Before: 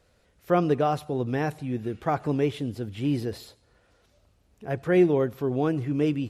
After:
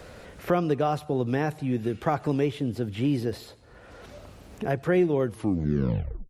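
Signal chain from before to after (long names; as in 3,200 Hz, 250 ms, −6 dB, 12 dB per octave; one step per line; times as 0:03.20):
turntable brake at the end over 1.09 s
multiband upward and downward compressor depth 70%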